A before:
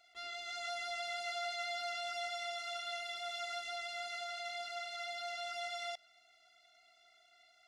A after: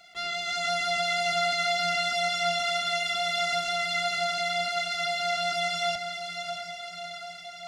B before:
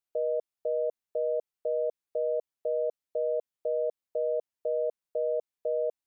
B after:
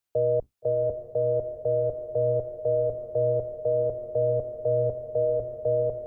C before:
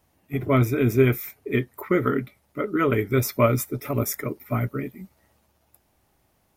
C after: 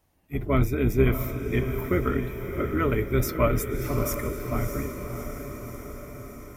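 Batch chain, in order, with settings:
octave divider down 2 oct, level -1 dB; echo that smears into a reverb 639 ms, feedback 64%, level -7.5 dB; normalise loudness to -27 LUFS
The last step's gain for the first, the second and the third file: +13.0 dB, +5.0 dB, -4.0 dB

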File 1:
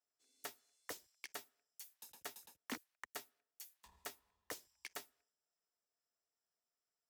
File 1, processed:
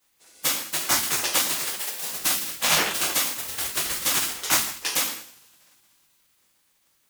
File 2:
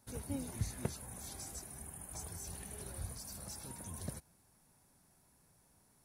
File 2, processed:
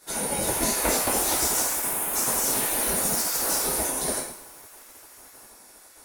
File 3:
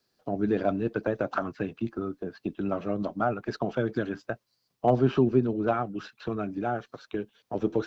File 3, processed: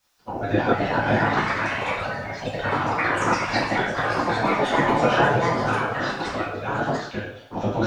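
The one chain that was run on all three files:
ever faster or slower copies 357 ms, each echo +3 st, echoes 3; two-slope reverb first 0.62 s, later 3 s, from -28 dB, DRR -7 dB; spectral gate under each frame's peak -10 dB weak; normalise loudness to -23 LUFS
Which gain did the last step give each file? +22.0 dB, +14.5 dB, +5.5 dB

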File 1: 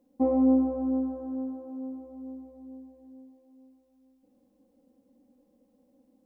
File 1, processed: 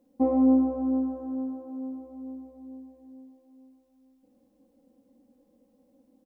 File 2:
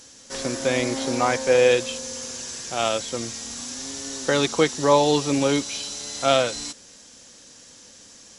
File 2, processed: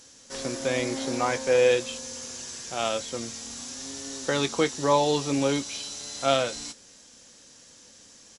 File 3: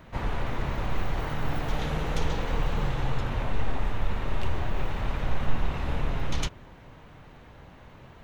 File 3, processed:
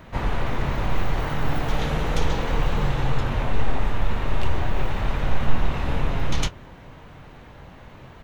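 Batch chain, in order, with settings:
doubling 22 ms -13 dB; normalise loudness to -27 LUFS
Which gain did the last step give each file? +1.5 dB, -4.5 dB, +5.0 dB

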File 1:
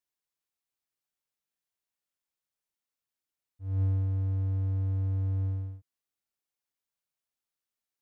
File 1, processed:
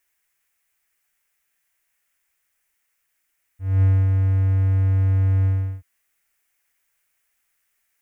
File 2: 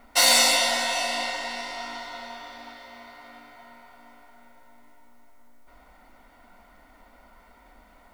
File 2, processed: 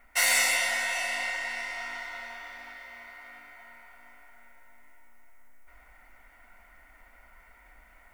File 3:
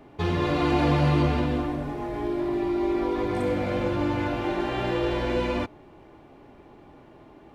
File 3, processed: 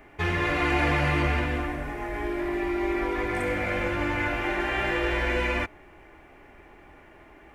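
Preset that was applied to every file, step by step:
in parallel at -2 dB: gain riding within 5 dB 2 s; on the sum: graphic EQ 125/250/500/1000/2000/4000 Hz -12/-9/-6/-6/+8/-11 dB; peak normalisation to -12 dBFS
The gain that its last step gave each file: +14.0 dB, -7.0 dB, +0.5 dB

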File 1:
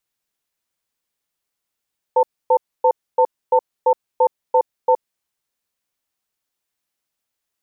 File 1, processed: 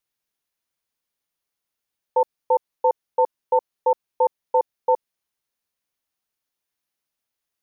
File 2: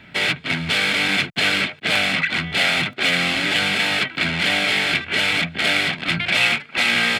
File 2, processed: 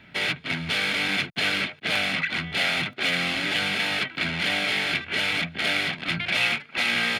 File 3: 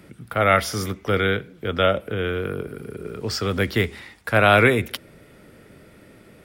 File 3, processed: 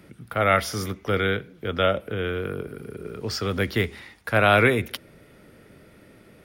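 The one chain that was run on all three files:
band-stop 7.7 kHz, Q 8; normalise loudness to -24 LUFS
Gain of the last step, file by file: -3.0 dB, -5.5 dB, -2.5 dB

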